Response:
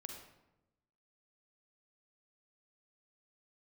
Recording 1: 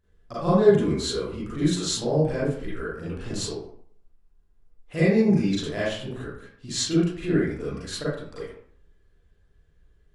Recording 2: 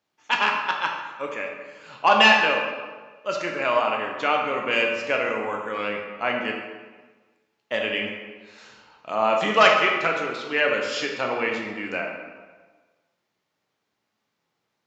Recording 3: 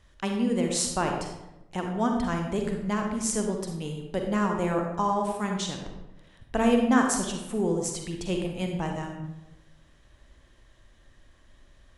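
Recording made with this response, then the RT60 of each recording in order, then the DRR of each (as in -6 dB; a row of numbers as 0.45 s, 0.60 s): 3; 0.60 s, 1.4 s, 0.95 s; -10.0 dB, 0.5 dB, 2.0 dB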